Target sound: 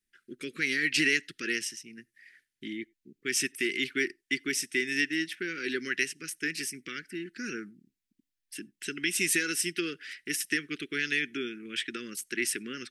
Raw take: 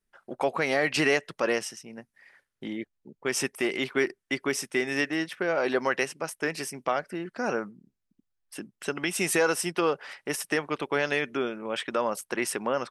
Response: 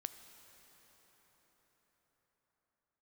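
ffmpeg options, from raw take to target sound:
-filter_complex "[0:a]asuperstop=centerf=770:order=8:qfactor=0.58,bass=f=250:g=-10,treble=f=4k:g=0,asplit=2[a][b];[1:a]atrim=start_sample=2205,atrim=end_sample=3969,asetrate=38808,aresample=44100[c];[b][c]afir=irnorm=-1:irlink=0,volume=-11dB[d];[a][d]amix=inputs=2:normalize=0"

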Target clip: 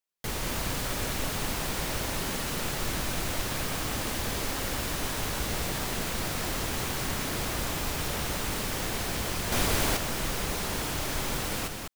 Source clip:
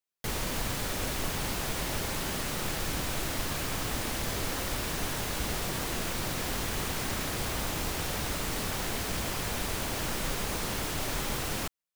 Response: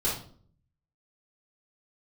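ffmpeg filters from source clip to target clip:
-filter_complex "[0:a]aecho=1:1:200:0.596,asettb=1/sr,asplit=3[a][b][c];[a]atrim=end=9.524[d];[b]atrim=start=9.52:end=9.97,asetpts=PTS-STARTPTS,afade=t=in:d=0.004:c=qsin,afade=t=out:st=0.446:d=0.004:c=qsin,acontrast=35[e];[c]atrim=start=9.966[f];[d][e]acrossfade=d=0.004:c1=hsin:c2=qsin[g];[g][f]acrossfade=d=0.004:c1=qsin:c2=hsin"

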